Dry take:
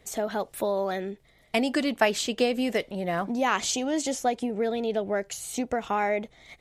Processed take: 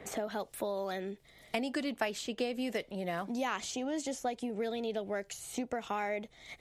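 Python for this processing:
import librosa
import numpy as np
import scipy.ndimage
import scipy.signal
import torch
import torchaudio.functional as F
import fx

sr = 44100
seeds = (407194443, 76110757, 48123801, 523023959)

y = fx.band_squash(x, sr, depth_pct=70)
y = y * librosa.db_to_amplitude(-9.0)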